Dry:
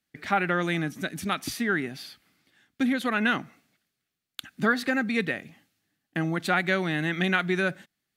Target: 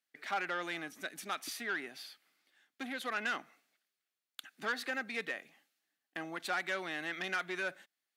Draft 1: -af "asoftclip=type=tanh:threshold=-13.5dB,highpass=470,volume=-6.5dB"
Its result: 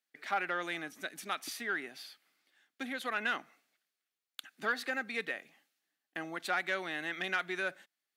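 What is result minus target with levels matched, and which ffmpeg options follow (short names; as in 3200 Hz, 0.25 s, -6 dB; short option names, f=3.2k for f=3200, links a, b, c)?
soft clip: distortion -9 dB
-af "asoftclip=type=tanh:threshold=-20.5dB,highpass=470,volume=-6.5dB"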